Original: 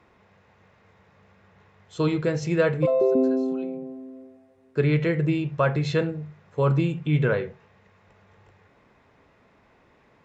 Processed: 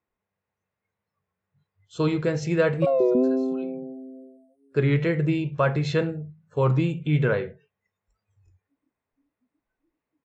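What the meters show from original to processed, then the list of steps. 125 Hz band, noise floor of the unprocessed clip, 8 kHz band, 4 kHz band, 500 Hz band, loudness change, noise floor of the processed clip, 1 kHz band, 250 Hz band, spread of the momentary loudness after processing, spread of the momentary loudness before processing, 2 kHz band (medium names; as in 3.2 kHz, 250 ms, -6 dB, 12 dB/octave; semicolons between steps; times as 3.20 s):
0.0 dB, -60 dBFS, no reading, 0.0 dB, 0.0 dB, 0.0 dB, under -85 dBFS, +0.5 dB, 0.0 dB, 15 LU, 15 LU, 0.0 dB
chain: spectral noise reduction 27 dB; warped record 33 1/3 rpm, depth 100 cents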